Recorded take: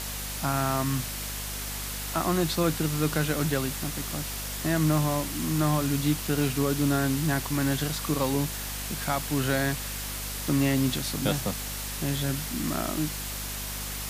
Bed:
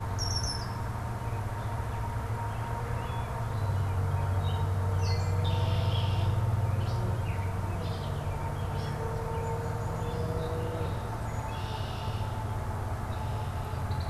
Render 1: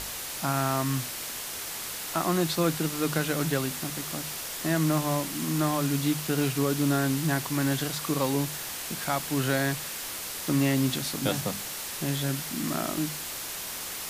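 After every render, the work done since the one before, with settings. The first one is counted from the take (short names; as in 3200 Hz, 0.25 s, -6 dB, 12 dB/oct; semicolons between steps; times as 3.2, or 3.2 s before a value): notches 50/100/150/200/250 Hz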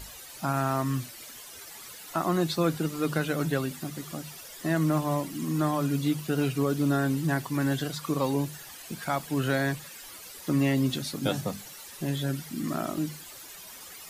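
denoiser 13 dB, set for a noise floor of -36 dBFS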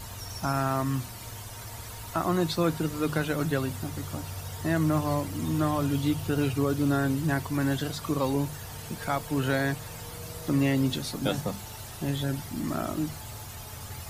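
add bed -9.5 dB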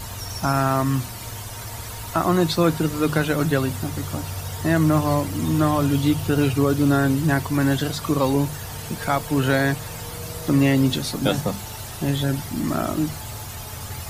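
gain +7 dB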